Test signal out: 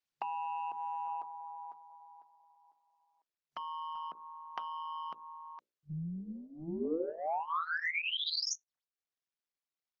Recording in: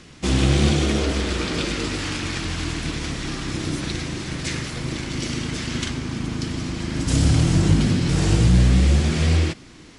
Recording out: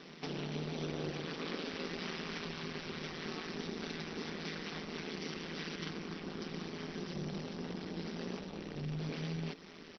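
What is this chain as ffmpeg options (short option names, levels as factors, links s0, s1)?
-filter_complex "[0:a]acrossover=split=460[s0][s1];[s1]acompressor=threshold=0.0562:ratio=4[s2];[s0][s2]amix=inputs=2:normalize=0,asoftclip=type=tanh:threshold=0.0891,acompressor=threshold=0.0282:ratio=20,bandreject=f=60:t=h:w=6,bandreject=f=120:t=h:w=6,bandreject=f=180:t=h:w=6,bandreject=f=240:t=h:w=6,bandreject=f=300:t=h:w=6,bandreject=f=360:t=h:w=6,bandreject=f=420:t=h:w=6,bandreject=f=480:t=h:w=6,bandreject=f=540:t=h:w=6,aecho=1:1:2.6:0.73,aeval=exprs='val(0)*sin(2*PI*81*n/s)':c=same,afftfilt=real='re*between(b*sr/4096,140,6000)':imag='im*between(b*sr/4096,140,6000)':win_size=4096:overlap=0.75,volume=0.841" -ar 48000 -c:a libopus -b:a 16k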